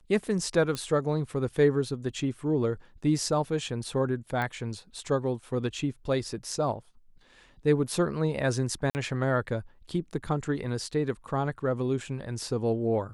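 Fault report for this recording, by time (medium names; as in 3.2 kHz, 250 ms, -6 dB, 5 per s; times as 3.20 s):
0.75 s: pop -18 dBFS
4.42 s: pop -19 dBFS
8.90–8.95 s: dropout 49 ms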